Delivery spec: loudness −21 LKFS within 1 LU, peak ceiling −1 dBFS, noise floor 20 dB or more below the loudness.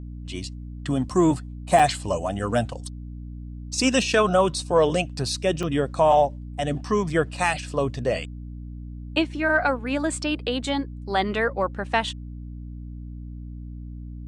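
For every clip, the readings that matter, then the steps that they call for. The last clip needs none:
number of dropouts 2; longest dropout 5.0 ms; mains hum 60 Hz; hum harmonics up to 300 Hz; level of the hum −34 dBFS; integrated loudness −23.5 LKFS; sample peak −6.0 dBFS; target loudness −21.0 LKFS
→ repair the gap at 0:01.79/0:05.63, 5 ms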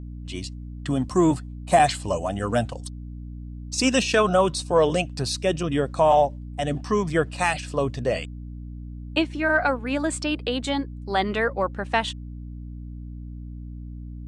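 number of dropouts 0; mains hum 60 Hz; hum harmonics up to 300 Hz; level of the hum −34 dBFS
→ hum removal 60 Hz, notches 5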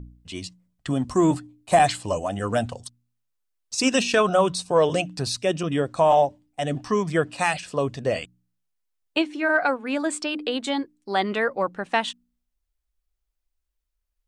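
mains hum none found; integrated loudness −24.0 LKFS; sample peak −6.5 dBFS; target loudness −21.0 LKFS
→ level +3 dB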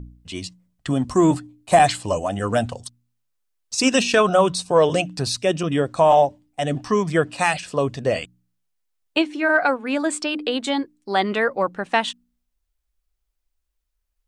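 integrated loudness −21.0 LKFS; sample peak −3.5 dBFS; background noise floor −75 dBFS

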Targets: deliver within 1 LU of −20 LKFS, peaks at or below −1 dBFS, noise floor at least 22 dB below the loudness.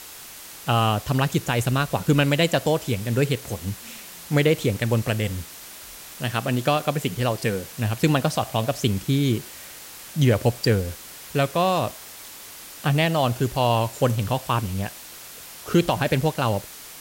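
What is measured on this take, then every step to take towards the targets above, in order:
background noise floor −41 dBFS; target noise floor −46 dBFS; integrated loudness −23.5 LKFS; sample peak −8.0 dBFS; target loudness −20.0 LKFS
→ broadband denoise 6 dB, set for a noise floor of −41 dBFS
level +3.5 dB

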